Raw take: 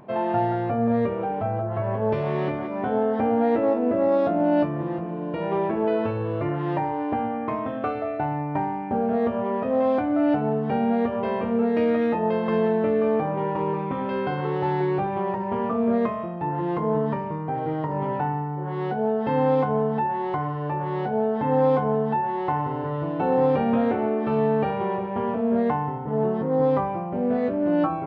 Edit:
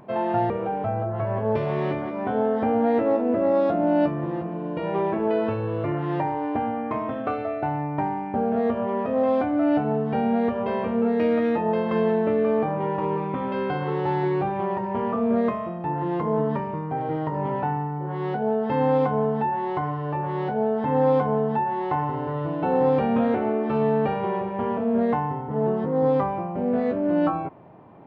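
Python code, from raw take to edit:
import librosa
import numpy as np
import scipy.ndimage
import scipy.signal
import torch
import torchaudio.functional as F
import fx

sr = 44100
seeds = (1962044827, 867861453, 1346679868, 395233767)

y = fx.edit(x, sr, fx.cut(start_s=0.5, length_s=0.57), tone=tone)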